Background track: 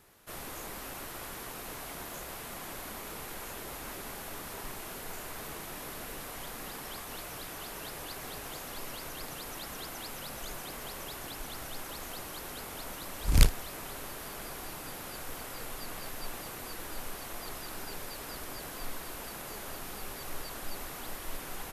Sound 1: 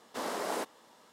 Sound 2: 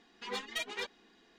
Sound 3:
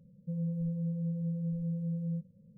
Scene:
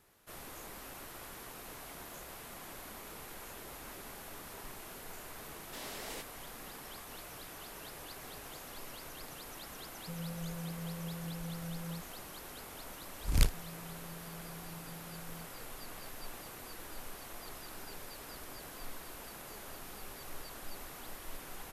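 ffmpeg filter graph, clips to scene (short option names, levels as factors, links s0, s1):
-filter_complex "[3:a]asplit=2[s0][s1];[0:a]volume=0.501[s2];[1:a]highshelf=f=1700:t=q:w=1.5:g=8.5[s3];[s0]equalizer=f=120:w=1.5:g=-10[s4];[s3]atrim=end=1.12,asetpts=PTS-STARTPTS,volume=0.224,afade=t=in:d=0.004:c=hsin,afade=t=out:st=1.116:d=0.004:c=hsin,adelay=5580[s5];[s4]atrim=end=2.57,asetpts=PTS-STARTPTS,volume=0.668,afade=t=in:d=0.004:c=hsin,afade=t=out:st=2.566:d=0.004:c=hsin,adelay=9800[s6];[s1]atrim=end=2.57,asetpts=PTS-STARTPTS,volume=0.141,afade=t=in:d=0.004:c=hsin,afade=t=out:st=2.566:d=0.004:c=hsin,adelay=13260[s7];[s2][s5][s6][s7]amix=inputs=4:normalize=0"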